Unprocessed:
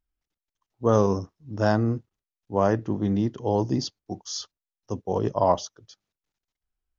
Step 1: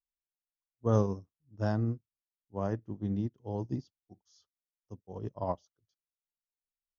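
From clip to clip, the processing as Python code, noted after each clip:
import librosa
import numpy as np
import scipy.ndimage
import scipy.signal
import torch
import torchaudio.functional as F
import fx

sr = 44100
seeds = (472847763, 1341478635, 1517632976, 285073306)

y = fx.low_shelf(x, sr, hz=250.0, db=10.5)
y = fx.upward_expand(y, sr, threshold_db=-28.0, expansion=2.5)
y = F.gain(torch.from_numpy(y), -9.0).numpy()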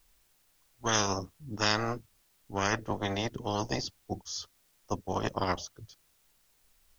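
y = fx.low_shelf(x, sr, hz=97.0, db=9.5)
y = fx.spectral_comp(y, sr, ratio=10.0)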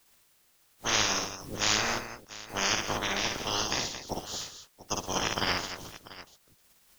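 y = fx.spec_clip(x, sr, under_db=24)
y = fx.echo_multitap(y, sr, ms=(56, 120, 223, 691), db=(-3.0, -14.5, -10.0, -16.0))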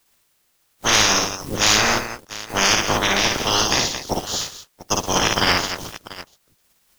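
y = fx.leveller(x, sr, passes=2)
y = F.gain(torch.from_numpy(y), 4.5).numpy()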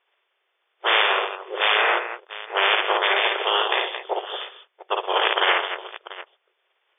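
y = fx.brickwall_bandpass(x, sr, low_hz=350.0, high_hz=3600.0)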